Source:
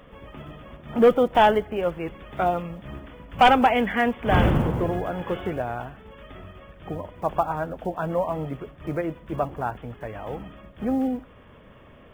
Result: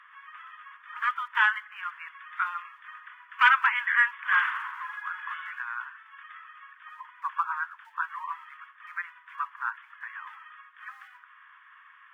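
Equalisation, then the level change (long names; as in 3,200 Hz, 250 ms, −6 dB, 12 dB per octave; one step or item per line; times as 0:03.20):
Butterworth high-pass 1,000 Hz 96 dB per octave
spectral tilt −4.5 dB per octave
parametric band 1,700 Hz +11 dB 0.75 octaves
0.0 dB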